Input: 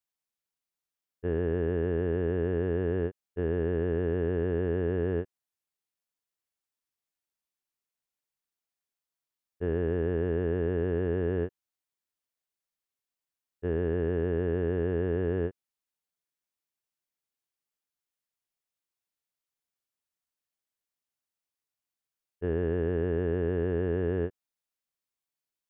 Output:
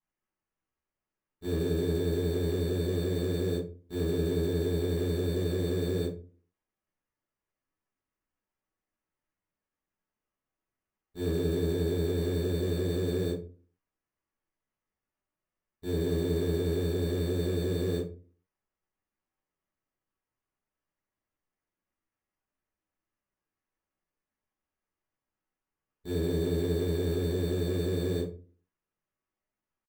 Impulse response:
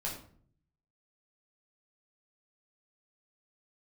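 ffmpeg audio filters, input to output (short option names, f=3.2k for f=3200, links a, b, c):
-filter_complex "[0:a]acrusher=samples=11:mix=1:aa=0.000001,atempo=0.86[a];[1:a]atrim=start_sample=2205,asetrate=83790,aresample=44100[b];[a][b]afir=irnorm=-1:irlink=0"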